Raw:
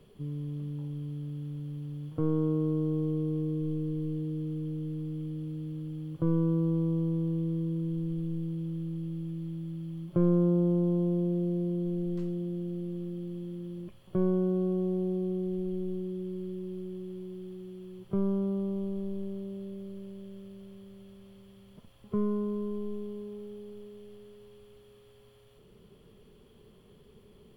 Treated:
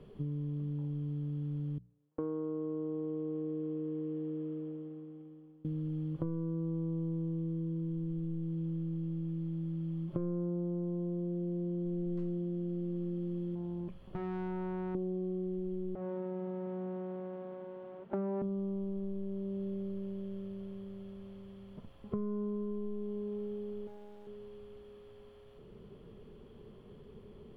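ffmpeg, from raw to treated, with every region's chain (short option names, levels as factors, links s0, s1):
-filter_complex "[0:a]asettb=1/sr,asplit=3[s0][s1][s2];[s0]atrim=end=1.784[s3];[s1]atrim=start=1.78:end=5.65,asetpts=PTS-STARTPTS,afade=t=in:d=0.004:c=qsin,afade=t=out:st=3.866:d=0.004:c=qsin,highpass=360,lowpass=2400,agate=range=0.0355:threshold=0.00631:ratio=16:release=100:detection=peak[s4];[s2]atrim=start=5.646[s5];[s3][s4]acrossfade=d=0.004:c1=hsin:c2=qsin[s6];[s6][s5]acrossfade=d=0.004:c1=qsin:c2=hsin,asettb=1/sr,asplit=3[s7][s8][s9];[s7]atrim=end=13.554[s10];[s8]atrim=start=13.55:end=14.95,asetpts=PTS-STARTPTS,afade=t=in:d=0.004:c=qsin,afade=t=out:st=1.396:d=0.004:c=qsin,aeval=exprs='(tanh(70.8*val(0)+0.25)-tanh(0.25))/70.8':c=same,aeval=exprs='val(0)+0.000891*(sin(2*PI*50*n/s)+sin(2*PI*2*50*n/s)/2+sin(2*PI*3*50*n/s)/3+sin(2*PI*4*50*n/s)/4+sin(2*PI*5*50*n/s)/5)':c=same[s11];[s9]atrim=start=14.946[s12];[s10][s11]acrossfade=d=0.004:c1=hsin:c2=qsin[s13];[s13][s12]acrossfade=d=0.004:c1=qsin:c2=hsin,asettb=1/sr,asplit=3[s14][s15][s16];[s14]atrim=end=15.954[s17];[s15]atrim=start=15.95:end=18.42,asetpts=PTS-STARTPTS,afade=t=in:d=0.004:c=qsin,afade=t=out:st=2.466:d=0.004:c=qsin,aecho=1:1:4.4:0.83,atrim=end_sample=108927,aeval=exprs='abs(val(0))':c=same,highpass=150,lowpass=2100[s18];[s16]atrim=start=18.416[s19];[s17][s18]acrossfade=d=0.004:c1=hsin:c2=qsin[s20];[s20][s19]acrossfade=d=0.004:c1=qsin:c2=hsin,asettb=1/sr,asplit=3[s21][s22][s23];[s21]atrim=end=23.874[s24];[s22]atrim=start=23.87:end=24.27,asetpts=PTS-STARTPTS,afade=t=in:d=0.004:c=qsin,afade=t=out:st=0.396:d=0.004:c=qsin,highpass=f=43:w=0.5412,highpass=f=43:w=1.3066,lowshelf=f=190:g=-10,acrusher=bits=8:dc=4:mix=0:aa=0.000001[s25];[s23]atrim=start=24.266[s26];[s24][s25]acrossfade=d=0.004:c1=hsin:c2=qsin[s27];[s27][s26]acrossfade=d=0.004:c1=qsin:c2=hsin,lowpass=f=1400:p=1,bandreject=f=60:t=h:w=6,bandreject=f=120:t=h:w=6,bandreject=f=180:t=h:w=6,acompressor=threshold=0.0126:ratio=6,volume=1.68"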